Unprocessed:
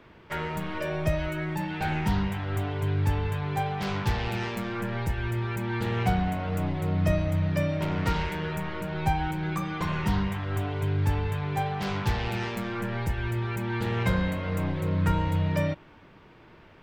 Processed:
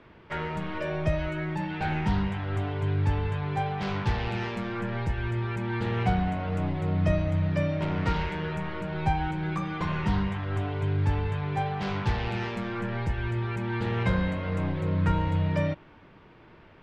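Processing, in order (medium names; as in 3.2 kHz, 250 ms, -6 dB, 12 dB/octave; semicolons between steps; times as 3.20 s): distance through air 95 m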